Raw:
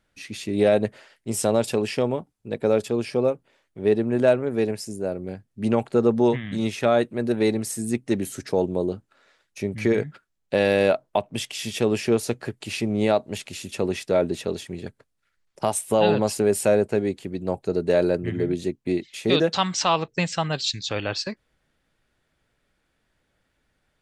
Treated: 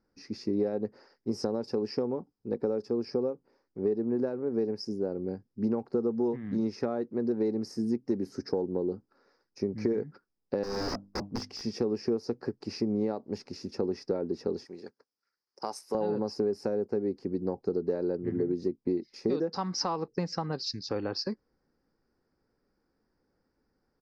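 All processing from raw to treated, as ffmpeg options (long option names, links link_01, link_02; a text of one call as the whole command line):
ffmpeg -i in.wav -filter_complex "[0:a]asettb=1/sr,asplit=3[link_01][link_02][link_03];[link_01]atrim=end=10.634[link_04];[link_02]atrim=start=10.63:end=11.66,asetpts=PTS-STARTPTS,afade=type=in:duration=0.004:curve=qsin,afade=type=out:start_time=1.026:duration=0.004:curve=qsin,bandreject=frequency=50:width_type=h:width=6,bandreject=frequency=100:width_type=h:width=6,bandreject=frequency=150:width_type=h:width=6,bandreject=frequency=200:width_type=h:width=6,bandreject=frequency=250:width_type=h:width=6,bandreject=frequency=300:width_type=h:width=6,aeval=exprs='(mod(11.9*val(0)+1,2)-1)/11.9':channel_layout=same,lowshelf=frequency=110:gain=10.5[link_05];[link_03]atrim=start=11.656[link_06];[link_04][link_05]acrossfade=duration=0.004:curve1=hsin:curve2=qsin[link_07];[link_07][link_06]acrossfade=duration=0.004:curve1=qsin:curve2=hsin,asettb=1/sr,asplit=3[link_08][link_09][link_10];[link_08]atrim=end=14.654[link_11];[link_09]atrim=start=14.65:end=15.95,asetpts=PTS-STARTPTS,afade=type=in:duration=0.004:curve=qsin,afade=type=out:start_time=1.296:duration=0.004:curve=qsin,highpass=frequency=980:poles=1,highshelf=frequency=5100:gain=8.5[link_12];[link_10]atrim=start=15.946[link_13];[link_11][link_12]acrossfade=duration=0.004:curve1=hsin:curve2=qsin[link_14];[link_14][link_13]acrossfade=duration=0.004:curve1=qsin:curve2=hsin,firequalizer=gain_entry='entry(130,0);entry(220,8);entry(440,9);entry(3300,-21);entry(5000,8);entry(7500,-22)':delay=0.05:min_phase=1,acompressor=threshold=-18dB:ratio=6,equalizer=frequency=630:width=6.1:gain=-12.5,volume=-7dB" out.wav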